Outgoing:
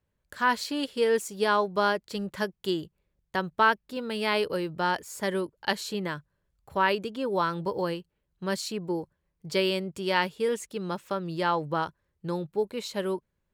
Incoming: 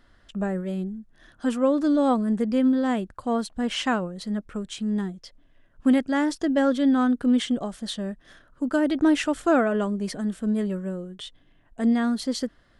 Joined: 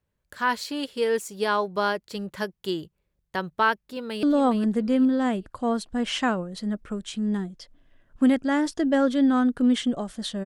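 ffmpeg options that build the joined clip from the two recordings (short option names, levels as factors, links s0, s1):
-filter_complex "[0:a]apad=whole_dur=10.45,atrim=end=10.45,atrim=end=4.232[s0];[1:a]atrim=start=1.868:end=8.09[s1];[s0][s1]acrossfade=d=0.004:c1=hsin:c2=hsin,asplit=2[s2][s3];[s3]afade=t=in:st=3.84:d=0.01,afade=t=out:st=4.23:d=0.01,aecho=0:1:410|820|1230|1640:0.398107|0.119432|0.0358296|0.0107489[s4];[s2][s4]amix=inputs=2:normalize=0"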